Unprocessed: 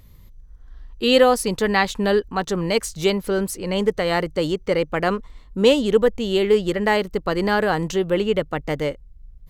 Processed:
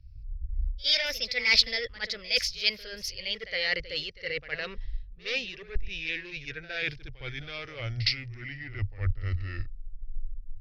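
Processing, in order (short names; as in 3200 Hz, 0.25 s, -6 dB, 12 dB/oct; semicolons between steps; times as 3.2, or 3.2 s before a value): speed glide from 125% -> 54%; in parallel at -7 dB: sine folder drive 10 dB, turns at -1.5 dBFS; on the sum: dynamic EQ 2300 Hz, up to +6 dB, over -31 dBFS, Q 1.2; reverse; compressor 12:1, threshold -18 dBFS, peak gain reduction 14.5 dB; reverse; EQ curve 110 Hz 0 dB, 170 Hz -21 dB, 330 Hz -24 dB, 510 Hz -12 dB, 1000 Hz -24 dB, 1900 Hz -2 dB, 3300 Hz -1 dB, 5200 Hz +7 dB, 8000 Hz -29 dB, 12000 Hz -19 dB; reverse echo 62 ms -10.5 dB; three-band expander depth 100%; gain -3 dB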